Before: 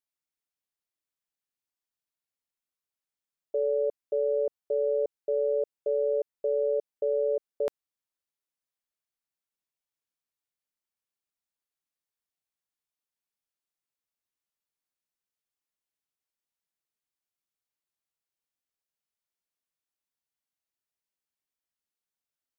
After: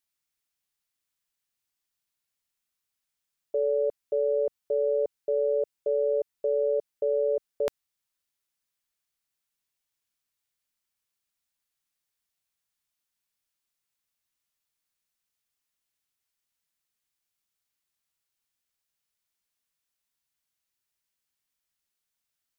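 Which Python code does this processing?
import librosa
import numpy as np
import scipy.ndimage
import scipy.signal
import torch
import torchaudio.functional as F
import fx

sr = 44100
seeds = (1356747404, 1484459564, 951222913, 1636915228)

y = fx.peak_eq(x, sr, hz=460.0, db=-7.0, octaves=2.7)
y = y * librosa.db_to_amplitude(8.0)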